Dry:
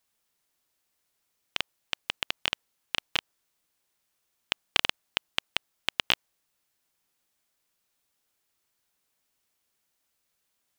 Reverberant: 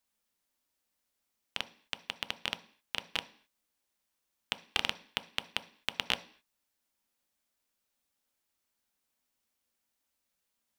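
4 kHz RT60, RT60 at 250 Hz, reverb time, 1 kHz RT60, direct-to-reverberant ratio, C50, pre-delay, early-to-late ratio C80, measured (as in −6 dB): can't be measured, 0.60 s, 0.50 s, 0.55 s, 10.0 dB, 17.0 dB, 3 ms, 21.0 dB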